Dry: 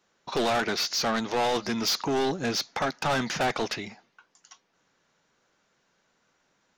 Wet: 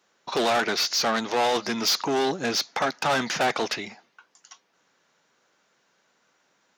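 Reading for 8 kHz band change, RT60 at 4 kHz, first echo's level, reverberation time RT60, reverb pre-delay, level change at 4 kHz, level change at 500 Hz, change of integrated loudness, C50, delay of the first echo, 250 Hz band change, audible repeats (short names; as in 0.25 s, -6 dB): +3.5 dB, none, none, none, none, +3.5 dB, +2.5 dB, +3.0 dB, none, none, 0.0 dB, none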